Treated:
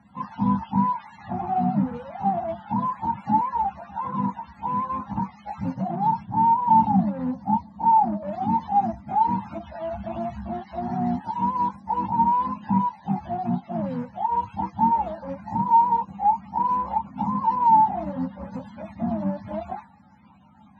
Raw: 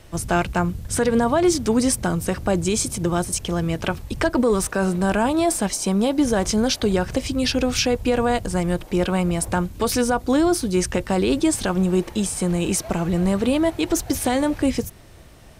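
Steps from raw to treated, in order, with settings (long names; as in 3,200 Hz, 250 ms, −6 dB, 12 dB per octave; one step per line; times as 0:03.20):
frequency axis turned over on the octave scale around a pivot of 480 Hz
in parallel at −10 dB: wave folding −25 dBFS
on the sum: pair of resonant band-passes 560 Hz, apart 2.1 octaves
speed change −25%
level +8 dB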